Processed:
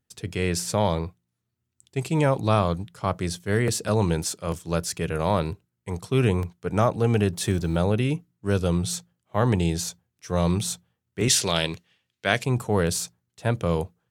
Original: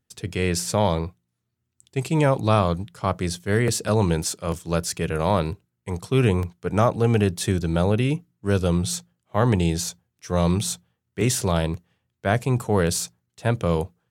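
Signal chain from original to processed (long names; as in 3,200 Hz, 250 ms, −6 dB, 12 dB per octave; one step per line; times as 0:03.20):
0:07.33–0:07.76: mu-law and A-law mismatch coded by mu
0:11.28–0:12.44: meter weighting curve D
level −2 dB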